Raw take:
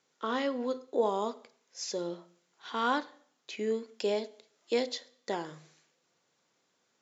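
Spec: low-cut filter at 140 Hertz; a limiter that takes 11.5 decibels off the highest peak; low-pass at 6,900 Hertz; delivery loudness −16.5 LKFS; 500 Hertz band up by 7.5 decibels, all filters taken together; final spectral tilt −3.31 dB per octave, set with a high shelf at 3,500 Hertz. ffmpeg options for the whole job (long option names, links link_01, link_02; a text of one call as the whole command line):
ffmpeg -i in.wav -af "highpass=140,lowpass=6900,equalizer=frequency=500:width_type=o:gain=8.5,highshelf=frequency=3500:gain=5,volume=15.5dB,alimiter=limit=-5dB:level=0:latency=1" out.wav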